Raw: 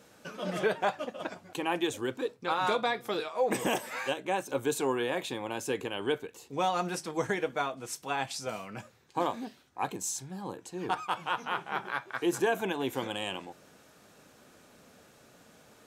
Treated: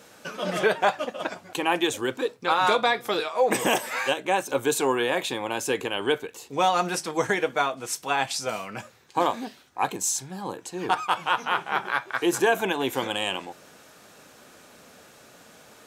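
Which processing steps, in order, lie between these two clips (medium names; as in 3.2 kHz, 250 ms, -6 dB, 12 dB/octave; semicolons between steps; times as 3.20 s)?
bass shelf 380 Hz -6.5 dB; trim +8.5 dB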